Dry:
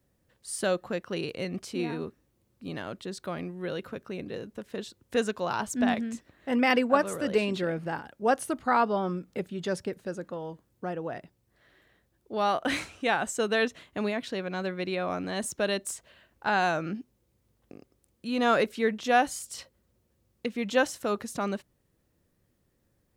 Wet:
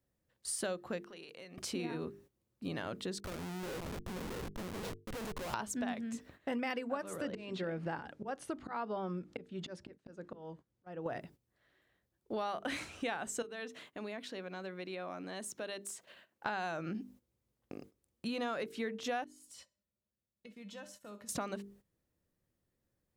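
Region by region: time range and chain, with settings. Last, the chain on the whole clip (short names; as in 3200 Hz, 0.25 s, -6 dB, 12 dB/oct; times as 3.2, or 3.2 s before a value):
1–1.58 HPF 540 Hz 6 dB/oct + compressor 4:1, threshold -52 dBFS
3.2–5.54 echo 0.495 s -9.5 dB + compressor 2:1, threshold -44 dBFS + Schmitt trigger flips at -44.5 dBFS
7.22–11.06 air absorption 66 m + auto swell 0.493 s
13.42–16.46 compressor 2:1, threshold -52 dBFS + HPF 180 Hz
19.24–21.29 compressor 2.5:1, threshold -44 dBFS + resonator 200 Hz, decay 0.21 s, harmonics odd, mix 80% + feedback echo 65 ms, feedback 36%, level -15 dB
whole clip: notches 50/100/150/200/250/300/350/400/450 Hz; gate -57 dBFS, range -13 dB; compressor 6:1, threshold -38 dBFS; gain +2.5 dB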